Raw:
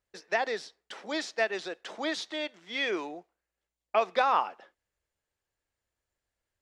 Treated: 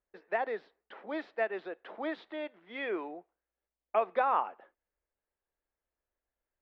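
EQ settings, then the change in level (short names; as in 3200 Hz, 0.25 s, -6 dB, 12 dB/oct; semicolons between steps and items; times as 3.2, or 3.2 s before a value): LPF 2300 Hz 6 dB/oct; air absorption 450 m; bell 110 Hz -13 dB 1.3 oct; 0.0 dB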